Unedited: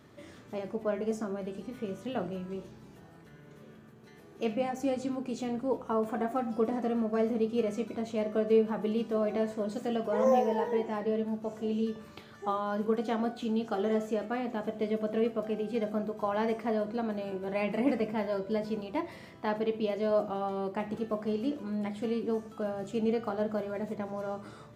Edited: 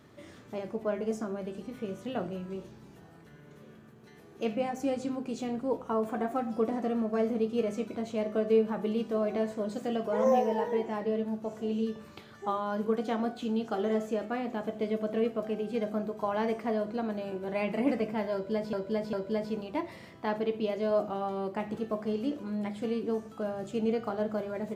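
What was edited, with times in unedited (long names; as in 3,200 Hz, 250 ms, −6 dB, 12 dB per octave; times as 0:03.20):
0:18.33–0:18.73: repeat, 3 plays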